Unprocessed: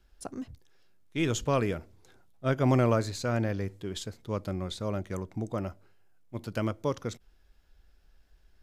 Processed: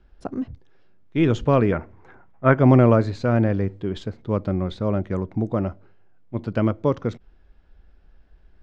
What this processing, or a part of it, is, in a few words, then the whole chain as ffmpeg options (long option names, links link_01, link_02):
phone in a pocket: -filter_complex "[0:a]asettb=1/sr,asplit=3[link_01][link_02][link_03];[link_01]atrim=end=1.724[link_04];[link_02]atrim=start=1.72:end=2.59,asetpts=PTS-STARTPTS,afade=type=in:duration=0.004:curve=qsin,afade=type=out:start_time=0.866:duration=0.004:curve=qsin,equalizer=frequency=1000:width_type=o:width=1:gain=9,equalizer=frequency=2000:width_type=o:width=1:gain=9,equalizer=frequency=4000:width_type=o:width=1:gain=-9[link_05];[link_03]atrim=start=2.586[link_06];[link_04][link_05]acrossfade=duration=0.004:curve1=hsin:curve2=qsin[link_07];[link_07][link_06]acrossfade=duration=0.004:curve1=qsin:curve2=hsin,lowpass=3900,equalizer=frequency=220:width_type=o:width=1.6:gain=2.5,highshelf=frequency=2300:gain=-10,volume=8.5dB"